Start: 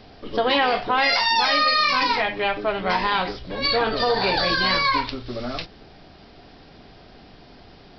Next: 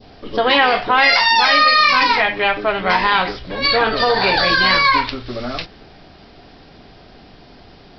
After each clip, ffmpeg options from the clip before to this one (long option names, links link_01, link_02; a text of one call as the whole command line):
ffmpeg -i in.wav -af "adynamicequalizer=threshold=0.0224:dfrequency=1800:dqfactor=0.71:tfrequency=1800:tqfactor=0.71:attack=5:release=100:ratio=0.375:range=2.5:mode=boostabove:tftype=bell,volume=3.5dB" out.wav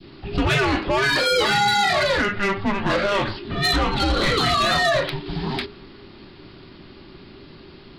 ffmpeg -i in.wav -af "alimiter=limit=-6dB:level=0:latency=1:release=449,asoftclip=type=tanh:threshold=-14dB,afreqshift=-410" out.wav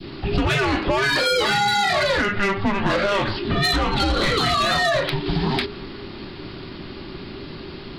ffmpeg -i in.wav -af "acompressor=threshold=-27dB:ratio=4,volume=8.5dB" out.wav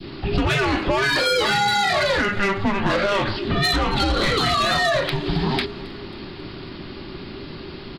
ffmpeg -i in.wav -af "aecho=1:1:271|542|813|1084:0.0794|0.0429|0.0232|0.0125" out.wav